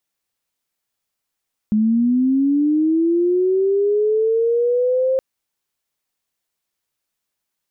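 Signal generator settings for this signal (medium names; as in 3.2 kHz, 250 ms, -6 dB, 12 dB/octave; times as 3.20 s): sweep linear 210 Hz -> 530 Hz -13 dBFS -> -14.5 dBFS 3.47 s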